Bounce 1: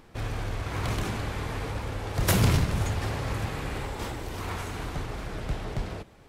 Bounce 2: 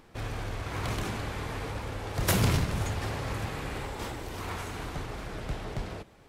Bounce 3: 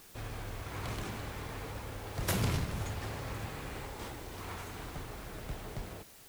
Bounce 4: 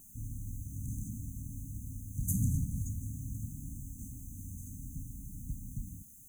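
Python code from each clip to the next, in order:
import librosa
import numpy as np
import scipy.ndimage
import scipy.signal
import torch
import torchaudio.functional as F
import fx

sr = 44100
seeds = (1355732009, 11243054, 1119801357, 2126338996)

y1 = fx.low_shelf(x, sr, hz=160.0, db=-3.0)
y1 = y1 * 10.0 ** (-1.5 / 20.0)
y2 = fx.dmg_noise_colour(y1, sr, seeds[0], colour='white', level_db=-50.0)
y2 = y2 * 10.0 ** (-6.5 / 20.0)
y3 = fx.brickwall_bandstop(y2, sr, low_hz=290.0, high_hz=6000.0)
y3 = y3 * 10.0 ** (2.0 / 20.0)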